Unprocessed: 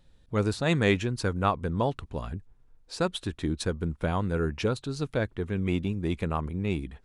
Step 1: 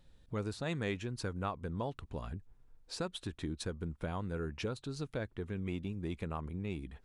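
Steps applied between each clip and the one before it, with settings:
downward compressor 2 to 1, threshold −38 dBFS, peak gain reduction 11 dB
level −2.5 dB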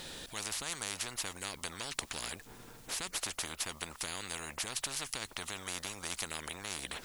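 high-shelf EQ 2,500 Hz +9 dB
every bin compressed towards the loudest bin 10 to 1
level +4.5 dB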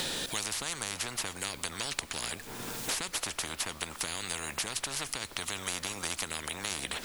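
convolution reverb RT60 2.8 s, pre-delay 4 ms, DRR 15.5 dB
multiband upward and downward compressor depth 100%
level +3 dB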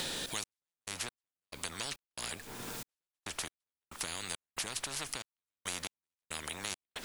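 gate pattern "xx..x..xx.x" 69 BPM −60 dB
level −3.5 dB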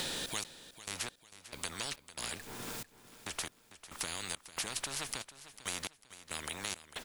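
repeating echo 448 ms, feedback 36%, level −15 dB

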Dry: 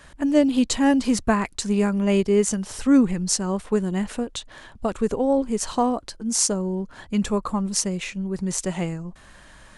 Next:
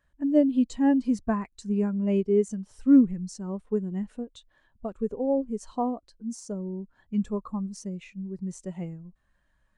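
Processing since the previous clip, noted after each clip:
de-essing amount 40%
every bin expanded away from the loudest bin 1.5 to 1
level −4 dB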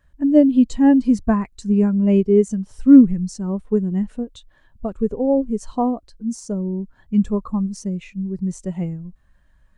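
low-shelf EQ 170 Hz +9 dB
level +6 dB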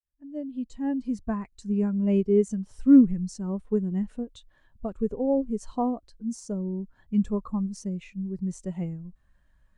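fade in at the beginning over 2.36 s
level −6.5 dB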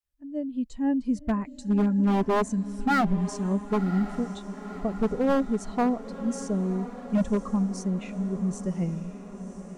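wave folding −20 dBFS
feedback delay with all-pass diffusion 1,030 ms, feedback 61%, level −13 dB
level +3 dB

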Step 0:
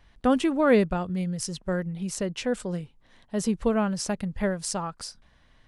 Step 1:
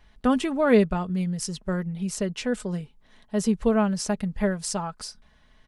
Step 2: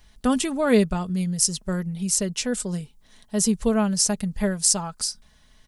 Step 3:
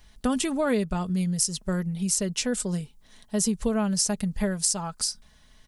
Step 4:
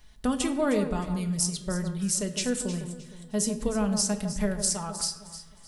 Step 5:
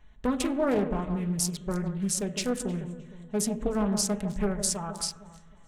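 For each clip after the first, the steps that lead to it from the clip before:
comb filter 4.7 ms, depth 42%
bass and treble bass +3 dB, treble +15 dB; level −1 dB
downward compressor 6 to 1, threshold −21 dBFS, peak gain reduction 8.5 dB
delay that swaps between a low-pass and a high-pass 155 ms, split 1,400 Hz, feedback 54%, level −8 dB; rectangular room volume 240 cubic metres, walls mixed, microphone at 0.4 metres; level −2.5 dB
adaptive Wiener filter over 9 samples; highs frequency-modulated by the lows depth 0.4 ms

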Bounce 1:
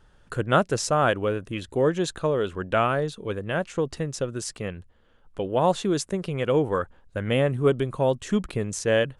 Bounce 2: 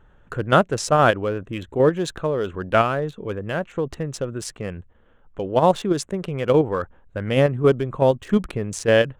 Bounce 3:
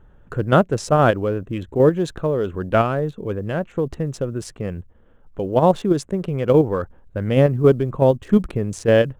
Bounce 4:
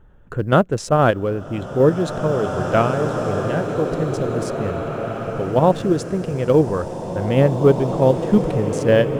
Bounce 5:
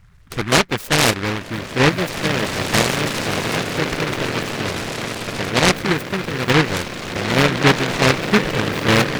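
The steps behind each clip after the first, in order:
adaptive Wiener filter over 9 samples; in parallel at +0.5 dB: output level in coarse steps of 21 dB
tilt shelving filter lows +4.5 dB, about 780 Hz; floating-point word with a short mantissa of 6 bits
slow-attack reverb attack 2,370 ms, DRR 4 dB
spectral magnitudes quantised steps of 30 dB; short delay modulated by noise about 1,500 Hz, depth 0.31 ms

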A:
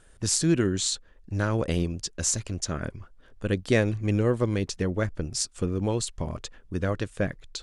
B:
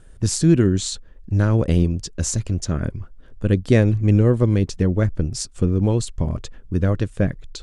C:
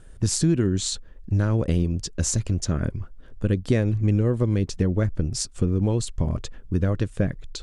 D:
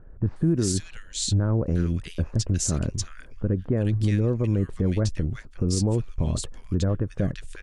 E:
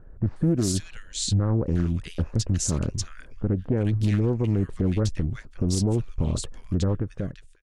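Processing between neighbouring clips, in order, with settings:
low-shelf EQ 380 Hz +11.5 dB
downward compressor 3 to 1, threshold −18 dBFS, peak gain reduction 7 dB
multiband delay without the direct sound lows, highs 360 ms, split 1,600 Hz; brickwall limiter −13.5 dBFS, peak gain reduction 5.5 dB
fade-out on the ending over 0.72 s; highs frequency-modulated by the lows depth 0.39 ms

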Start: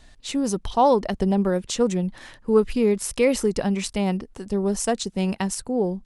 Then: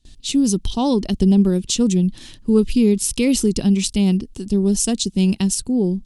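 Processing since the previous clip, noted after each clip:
flat-topped bell 1,000 Hz −15.5 dB 2.5 octaves
noise gate with hold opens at −44 dBFS
level +8 dB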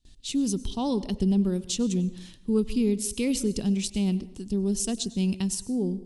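dense smooth reverb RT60 0.72 s, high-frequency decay 0.75×, pre-delay 85 ms, DRR 16 dB
level −9 dB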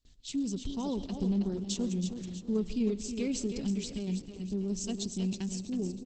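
repeating echo 321 ms, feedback 41%, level −8 dB
level −6.5 dB
Opus 10 kbit/s 48,000 Hz

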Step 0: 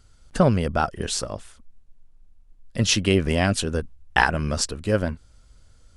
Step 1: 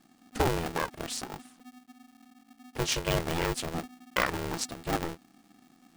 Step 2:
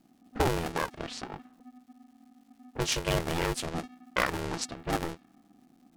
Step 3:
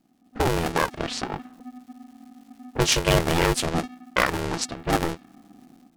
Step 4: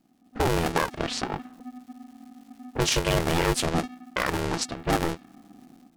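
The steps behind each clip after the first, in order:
surface crackle 110 per second −42 dBFS; ring modulator with a square carrier 250 Hz; level −9 dB
low-pass that shuts in the quiet parts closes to 680 Hz, open at −27.5 dBFS; surface crackle 440 per second −59 dBFS
automatic gain control gain up to 13 dB; level −2.5 dB
brickwall limiter −13 dBFS, peak gain reduction 9 dB

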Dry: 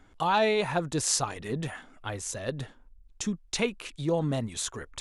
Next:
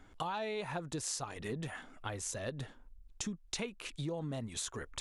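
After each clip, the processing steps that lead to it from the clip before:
downward compressor 6 to 1, threshold −35 dBFS, peak gain reduction 14 dB
level −1 dB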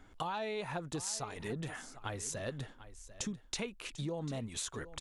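single-tap delay 745 ms −15.5 dB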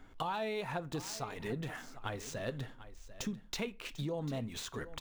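running median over 5 samples
on a send at −15.5 dB: convolution reverb RT60 0.35 s, pre-delay 3 ms
on the sum: level +1 dB

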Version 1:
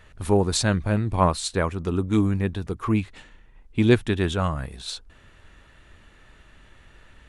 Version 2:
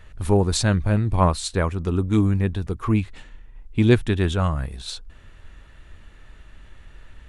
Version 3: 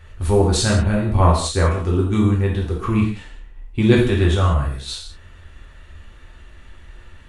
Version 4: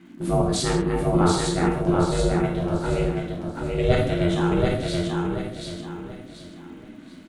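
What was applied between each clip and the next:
low-shelf EQ 82 Hz +10.5 dB
reverb whose tail is shaped and stops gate 220 ms falling, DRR −3.5 dB; level −1 dB
surface crackle 200 per second −48 dBFS; ring modulation 260 Hz; repeating echo 733 ms, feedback 33%, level −3.5 dB; level −3 dB

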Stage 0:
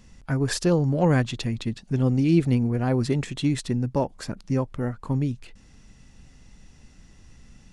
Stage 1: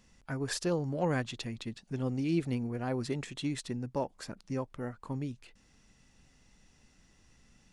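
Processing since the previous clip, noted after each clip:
low-shelf EQ 220 Hz −8.5 dB
level −7 dB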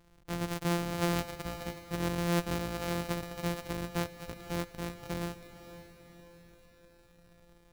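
samples sorted by size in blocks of 256 samples
feedback delay with all-pass diffusion 518 ms, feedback 52%, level −13 dB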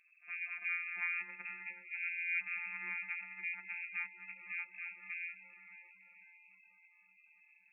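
backwards echo 66 ms −16.5 dB
gate on every frequency bin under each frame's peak −15 dB strong
voice inversion scrambler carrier 2,600 Hz
level −6.5 dB

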